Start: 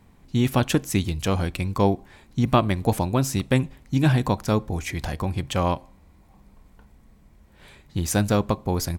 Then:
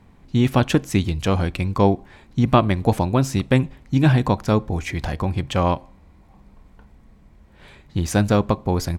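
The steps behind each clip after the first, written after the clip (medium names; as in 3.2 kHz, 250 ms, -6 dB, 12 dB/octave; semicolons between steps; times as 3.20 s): treble shelf 7.1 kHz -12 dB; trim +3.5 dB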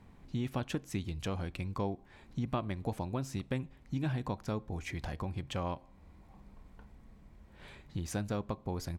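compression 2:1, threshold -35 dBFS, peak gain reduction 14 dB; trim -6 dB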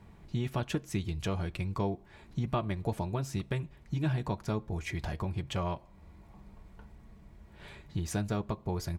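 comb of notches 260 Hz; trim +4 dB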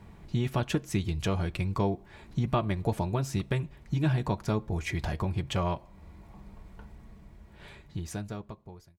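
fade out at the end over 1.99 s; trim +4 dB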